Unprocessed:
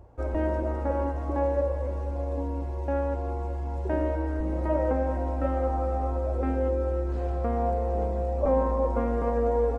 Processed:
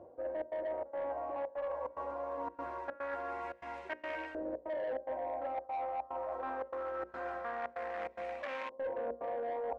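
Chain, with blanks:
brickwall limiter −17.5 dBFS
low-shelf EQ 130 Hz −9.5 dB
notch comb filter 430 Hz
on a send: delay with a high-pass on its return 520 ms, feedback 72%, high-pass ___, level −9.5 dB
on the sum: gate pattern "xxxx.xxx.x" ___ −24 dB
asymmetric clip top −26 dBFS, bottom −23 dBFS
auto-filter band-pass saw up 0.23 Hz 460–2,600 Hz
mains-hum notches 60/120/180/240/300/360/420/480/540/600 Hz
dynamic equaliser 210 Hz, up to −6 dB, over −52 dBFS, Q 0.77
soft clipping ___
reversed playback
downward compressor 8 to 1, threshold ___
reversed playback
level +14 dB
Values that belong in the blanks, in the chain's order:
2,400 Hz, 145 BPM, −33 dBFS, −50 dBFS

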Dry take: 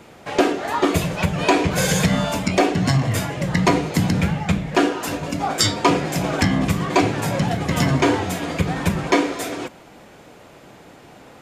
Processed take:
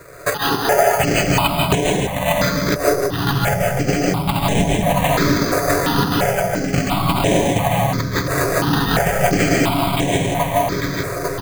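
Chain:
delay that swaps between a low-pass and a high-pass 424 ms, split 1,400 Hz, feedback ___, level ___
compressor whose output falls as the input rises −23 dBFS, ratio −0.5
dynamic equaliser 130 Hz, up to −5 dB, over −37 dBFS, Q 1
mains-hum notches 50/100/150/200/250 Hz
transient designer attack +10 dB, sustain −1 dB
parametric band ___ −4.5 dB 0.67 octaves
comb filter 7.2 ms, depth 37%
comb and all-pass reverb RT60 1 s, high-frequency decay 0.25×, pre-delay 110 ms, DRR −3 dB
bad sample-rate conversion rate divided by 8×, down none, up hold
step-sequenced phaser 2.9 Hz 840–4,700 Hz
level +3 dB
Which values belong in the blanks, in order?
82%, −8 dB, 320 Hz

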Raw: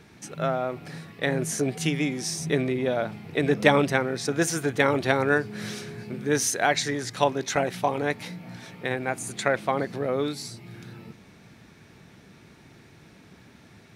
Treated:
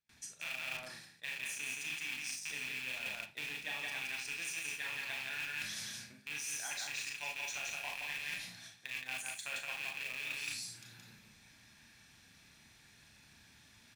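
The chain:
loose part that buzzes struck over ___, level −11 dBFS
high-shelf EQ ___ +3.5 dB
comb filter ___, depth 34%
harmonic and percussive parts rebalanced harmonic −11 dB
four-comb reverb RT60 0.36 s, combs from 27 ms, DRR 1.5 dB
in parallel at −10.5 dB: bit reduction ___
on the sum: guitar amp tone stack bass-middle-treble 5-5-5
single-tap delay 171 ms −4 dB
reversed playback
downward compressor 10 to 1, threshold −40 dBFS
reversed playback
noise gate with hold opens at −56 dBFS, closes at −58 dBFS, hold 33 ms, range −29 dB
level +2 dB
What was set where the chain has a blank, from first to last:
−30 dBFS, 2,000 Hz, 1.2 ms, 4 bits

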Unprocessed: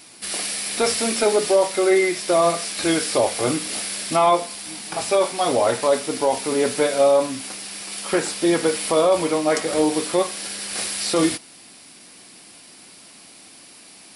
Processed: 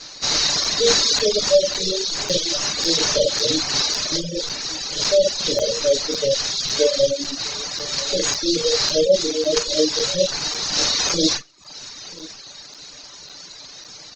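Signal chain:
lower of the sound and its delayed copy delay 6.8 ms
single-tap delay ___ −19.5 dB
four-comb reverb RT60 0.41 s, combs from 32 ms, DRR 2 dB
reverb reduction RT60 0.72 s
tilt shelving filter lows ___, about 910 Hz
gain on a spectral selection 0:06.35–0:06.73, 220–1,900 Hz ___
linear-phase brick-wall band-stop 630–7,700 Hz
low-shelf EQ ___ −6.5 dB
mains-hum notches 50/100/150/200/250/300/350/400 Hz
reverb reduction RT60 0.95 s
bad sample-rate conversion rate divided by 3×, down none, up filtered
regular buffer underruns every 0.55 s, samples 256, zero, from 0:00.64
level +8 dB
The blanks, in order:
988 ms, −5 dB, −29 dB, 360 Hz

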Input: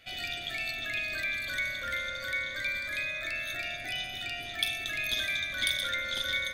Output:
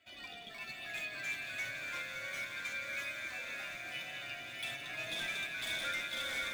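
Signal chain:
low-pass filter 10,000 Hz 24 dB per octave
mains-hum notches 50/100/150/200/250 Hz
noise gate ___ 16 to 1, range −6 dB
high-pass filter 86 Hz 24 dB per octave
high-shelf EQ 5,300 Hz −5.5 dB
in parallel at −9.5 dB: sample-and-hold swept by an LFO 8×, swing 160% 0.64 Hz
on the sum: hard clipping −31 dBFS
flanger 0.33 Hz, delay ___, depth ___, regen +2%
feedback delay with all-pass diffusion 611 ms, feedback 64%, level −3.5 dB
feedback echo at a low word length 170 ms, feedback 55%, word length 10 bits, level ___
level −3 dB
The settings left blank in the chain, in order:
−33 dBFS, 3 ms, 4.9 ms, −14 dB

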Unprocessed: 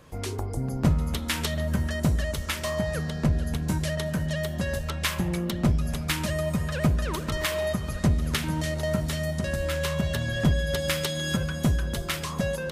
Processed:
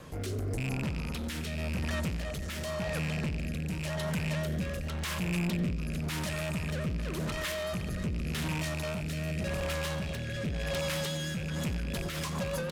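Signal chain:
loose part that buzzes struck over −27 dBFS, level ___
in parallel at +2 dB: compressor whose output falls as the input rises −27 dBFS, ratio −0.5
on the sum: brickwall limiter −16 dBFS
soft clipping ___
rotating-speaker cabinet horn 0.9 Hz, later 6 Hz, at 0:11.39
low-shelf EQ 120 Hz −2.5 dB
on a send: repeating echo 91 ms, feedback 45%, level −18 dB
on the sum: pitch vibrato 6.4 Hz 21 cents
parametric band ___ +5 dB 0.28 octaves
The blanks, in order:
−18 dBFS, −29 dBFS, 180 Hz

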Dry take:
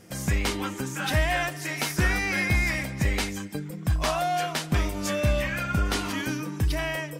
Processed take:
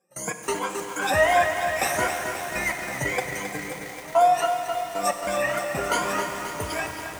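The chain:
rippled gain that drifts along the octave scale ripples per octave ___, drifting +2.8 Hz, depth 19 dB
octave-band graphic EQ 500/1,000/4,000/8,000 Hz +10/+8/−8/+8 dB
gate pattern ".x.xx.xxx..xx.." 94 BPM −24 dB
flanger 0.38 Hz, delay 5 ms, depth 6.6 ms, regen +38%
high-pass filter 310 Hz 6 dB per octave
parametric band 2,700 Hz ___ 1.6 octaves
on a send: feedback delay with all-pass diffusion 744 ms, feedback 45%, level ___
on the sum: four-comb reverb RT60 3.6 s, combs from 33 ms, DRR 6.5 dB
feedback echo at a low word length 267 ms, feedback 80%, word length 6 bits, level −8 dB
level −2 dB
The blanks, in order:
1.8, +4 dB, −16 dB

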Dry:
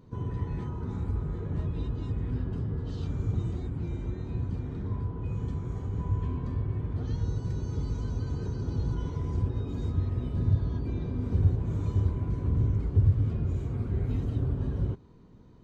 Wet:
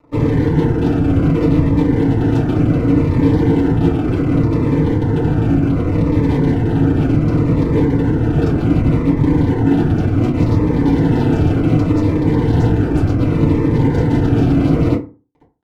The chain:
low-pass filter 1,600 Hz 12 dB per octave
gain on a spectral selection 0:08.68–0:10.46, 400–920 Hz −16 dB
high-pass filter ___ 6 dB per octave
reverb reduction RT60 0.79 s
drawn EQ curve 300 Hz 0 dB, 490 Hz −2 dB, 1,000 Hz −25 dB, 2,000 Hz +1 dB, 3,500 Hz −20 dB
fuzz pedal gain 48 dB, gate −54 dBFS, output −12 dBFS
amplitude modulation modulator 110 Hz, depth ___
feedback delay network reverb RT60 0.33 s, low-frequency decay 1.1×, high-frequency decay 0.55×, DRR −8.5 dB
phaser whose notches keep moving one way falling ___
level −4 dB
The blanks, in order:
280 Hz, 100%, 0.67 Hz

